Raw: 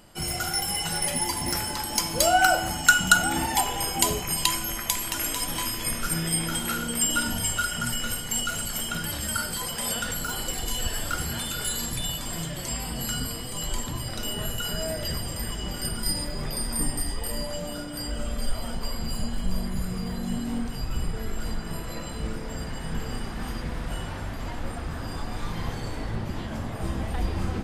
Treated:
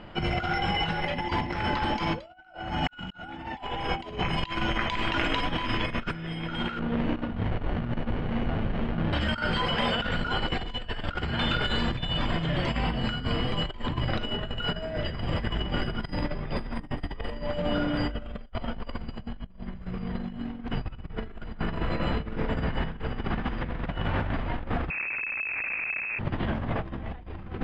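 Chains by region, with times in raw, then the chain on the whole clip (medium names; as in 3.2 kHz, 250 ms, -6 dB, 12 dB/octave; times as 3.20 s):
6.79–9.13 s: low-pass 2.8 kHz + sliding maximum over 33 samples
24.90–26.19 s: Schmitt trigger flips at -34 dBFS + frequency inversion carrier 2.6 kHz
whole clip: low-pass 3.1 kHz 24 dB/octave; compressor with a negative ratio -34 dBFS, ratio -0.5; trim +4.5 dB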